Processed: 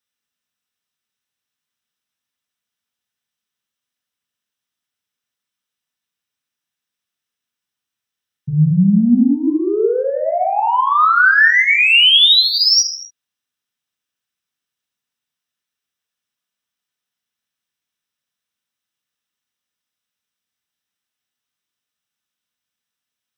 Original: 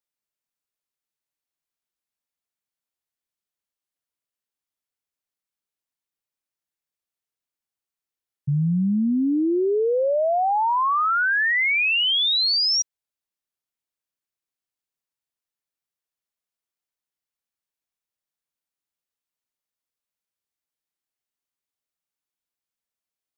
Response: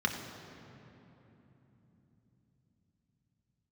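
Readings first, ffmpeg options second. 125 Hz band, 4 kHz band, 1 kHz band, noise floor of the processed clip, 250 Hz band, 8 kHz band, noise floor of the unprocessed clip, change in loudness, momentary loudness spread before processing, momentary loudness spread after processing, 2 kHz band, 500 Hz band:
+8.5 dB, +9.5 dB, +6.0 dB, −84 dBFS, +8.0 dB, can't be measured, below −85 dBFS, +8.0 dB, 5 LU, 11 LU, +9.0 dB, +3.0 dB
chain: -filter_complex "[0:a]highshelf=frequency=2100:gain=8,acontrast=75[link_01];[1:a]atrim=start_sample=2205,afade=type=out:start_time=0.33:duration=0.01,atrim=end_sample=14994[link_02];[link_01][link_02]afir=irnorm=-1:irlink=0,volume=-9.5dB"

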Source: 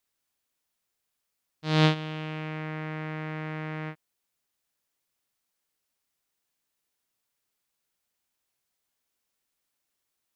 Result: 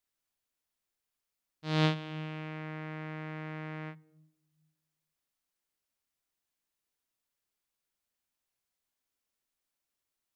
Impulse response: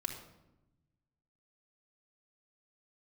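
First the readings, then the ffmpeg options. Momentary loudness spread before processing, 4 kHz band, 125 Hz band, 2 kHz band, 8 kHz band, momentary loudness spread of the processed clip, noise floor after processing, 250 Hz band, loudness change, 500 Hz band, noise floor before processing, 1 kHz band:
15 LU, −6.0 dB, −5.5 dB, −6.0 dB, can't be measured, 15 LU, below −85 dBFS, −5.5 dB, −6.0 dB, −6.0 dB, −82 dBFS, −6.0 dB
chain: -filter_complex "[0:a]asplit=2[link_01][link_02];[link_02]aemphasis=mode=reproduction:type=bsi[link_03];[1:a]atrim=start_sample=2205[link_04];[link_03][link_04]afir=irnorm=-1:irlink=0,volume=-18dB[link_05];[link_01][link_05]amix=inputs=2:normalize=0,volume=-6.5dB"

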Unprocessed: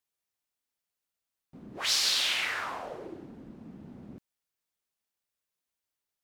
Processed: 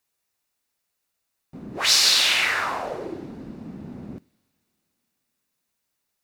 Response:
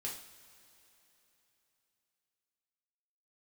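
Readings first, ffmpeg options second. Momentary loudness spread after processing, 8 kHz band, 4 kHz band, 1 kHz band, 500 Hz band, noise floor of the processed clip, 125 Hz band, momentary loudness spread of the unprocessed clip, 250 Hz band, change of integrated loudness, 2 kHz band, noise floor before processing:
20 LU, +9.5 dB, +9.0 dB, +9.5 dB, +9.5 dB, −79 dBFS, +9.5 dB, 20 LU, +9.5 dB, +9.0 dB, +9.5 dB, below −85 dBFS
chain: -filter_complex "[0:a]bandreject=frequency=3200:width=14,asplit=2[link_01][link_02];[1:a]atrim=start_sample=2205[link_03];[link_02][link_03]afir=irnorm=-1:irlink=0,volume=-19.5dB[link_04];[link_01][link_04]amix=inputs=2:normalize=0,volume=9dB"

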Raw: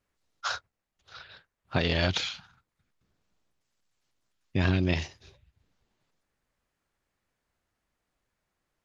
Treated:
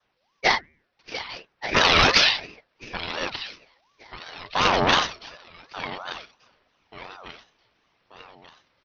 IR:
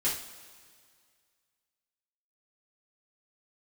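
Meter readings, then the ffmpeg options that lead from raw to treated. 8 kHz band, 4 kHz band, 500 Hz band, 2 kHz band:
can't be measured, +13.0 dB, +8.0 dB, +12.5 dB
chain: -filter_complex "[0:a]adynamicequalizer=threshold=0.00794:dfrequency=1400:dqfactor=1.3:tfrequency=1400:tqfactor=1.3:attack=5:release=100:ratio=0.375:range=2:mode=boostabove:tftype=bell,bandreject=frequency=152.6:width_type=h:width=4,bandreject=frequency=305.2:width_type=h:width=4,bandreject=frequency=457.8:width_type=h:width=4,bandreject=frequency=610.4:width_type=h:width=4,bandreject=frequency=763:width_type=h:width=4,bandreject=frequency=915.6:width_type=h:width=4,bandreject=frequency=1068.2:width_type=h:width=4,bandreject=frequency=1220.8:width_type=h:width=4,asplit=2[link_01][link_02];[link_02]aecho=0:1:1184|2368|3552:0.119|0.044|0.0163[link_03];[link_01][link_03]amix=inputs=2:normalize=0,aphaser=in_gain=1:out_gain=1:delay=3.3:decay=0.33:speed=0.61:type=sinusoidal,dynaudnorm=framelen=680:gausssize=3:maxgain=6dB,aresample=11025,asoftclip=type=hard:threshold=-20dB,aresample=44100,acontrast=67,lowshelf=frequency=310:gain=-12,aeval=exprs='val(0)*sin(2*PI*830*n/s+830*0.4/2.8*sin(2*PI*2.8*n/s))':channel_layout=same,volume=6.5dB"

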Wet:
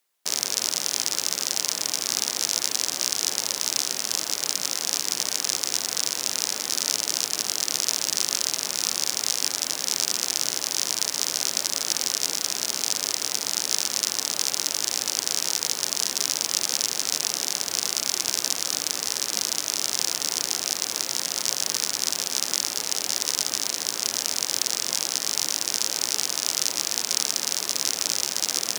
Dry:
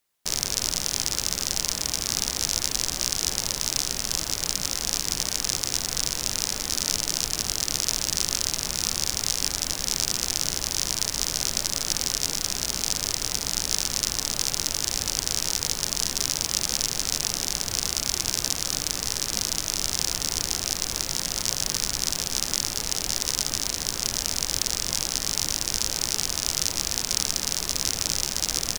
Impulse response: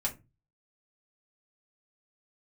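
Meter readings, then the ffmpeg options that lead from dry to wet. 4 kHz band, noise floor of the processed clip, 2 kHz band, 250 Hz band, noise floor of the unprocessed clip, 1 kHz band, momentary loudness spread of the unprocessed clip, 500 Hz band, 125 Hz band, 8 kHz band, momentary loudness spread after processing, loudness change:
+1.0 dB, −37 dBFS, +1.0 dB, −3.5 dB, −35 dBFS, +1.0 dB, 2 LU, +0.5 dB, −13.5 dB, +1.0 dB, 2 LU, +1.0 dB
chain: -af "highpass=290,areverse,acompressor=mode=upward:threshold=-32dB:ratio=2.5,areverse,volume=1dB"

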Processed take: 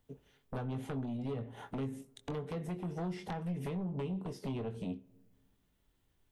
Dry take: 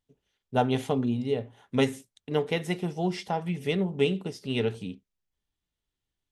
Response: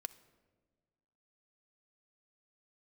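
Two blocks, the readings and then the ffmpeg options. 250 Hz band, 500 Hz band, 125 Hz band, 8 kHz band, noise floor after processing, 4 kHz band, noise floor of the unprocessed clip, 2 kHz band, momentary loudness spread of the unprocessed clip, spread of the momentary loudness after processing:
−9.0 dB, −14.0 dB, −6.5 dB, −12.5 dB, −75 dBFS, −18.5 dB, below −85 dBFS, −16.0 dB, 6 LU, 6 LU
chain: -filter_complex "[0:a]acrossover=split=230|1400[link_01][link_02][link_03];[link_01]acompressor=threshold=-31dB:ratio=4[link_04];[link_02]acompressor=threshold=-36dB:ratio=4[link_05];[link_03]acompressor=threshold=-47dB:ratio=4[link_06];[link_04][link_05][link_06]amix=inputs=3:normalize=0,equalizer=frequency=5000:width_type=o:width=2.4:gain=-8.5,acompressor=threshold=-44dB:ratio=10,aeval=exprs='0.0224*sin(PI/2*2.82*val(0)/0.0224)':channel_layout=same,asplit=2[link_07][link_08];[1:a]atrim=start_sample=2205,adelay=22[link_09];[link_08][link_09]afir=irnorm=-1:irlink=0,volume=-5.5dB[link_10];[link_07][link_10]amix=inputs=2:normalize=0,volume=-1dB"

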